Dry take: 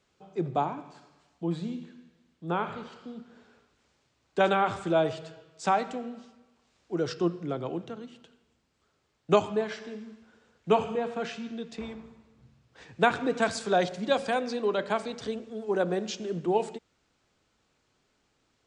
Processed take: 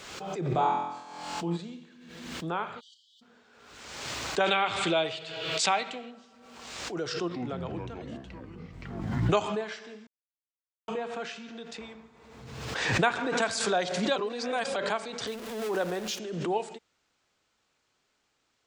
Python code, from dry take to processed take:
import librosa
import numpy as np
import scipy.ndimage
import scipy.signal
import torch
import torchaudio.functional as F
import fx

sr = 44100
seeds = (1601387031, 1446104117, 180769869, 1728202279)

y = fx.room_flutter(x, sr, wall_m=4.0, rt60_s=0.93, at=(0.54, 1.56), fade=0.02)
y = fx.brickwall_highpass(y, sr, low_hz=2900.0, at=(2.79, 3.21), fade=0.02)
y = fx.band_shelf(y, sr, hz=3000.0, db=9.0, octaves=1.3, at=(4.46, 6.11))
y = fx.echo_pitch(y, sr, ms=127, semitones=-6, count=3, db_per_echo=-3.0, at=(7.15, 9.47))
y = fx.echo_bbd(y, sr, ms=72, stages=1024, feedback_pct=77, wet_db=-17.5, at=(11.49, 13.43), fade=0.02)
y = fx.zero_step(y, sr, step_db=-37.0, at=(15.27, 16.19))
y = fx.edit(y, sr, fx.silence(start_s=10.07, length_s=0.81),
    fx.reverse_span(start_s=14.16, length_s=0.6), tone=tone)
y = fx.low_shelf(y, sr, hz=470.0, db=-10.0)
y = fx.pre_swell(y, sr, db_per_s=41.0)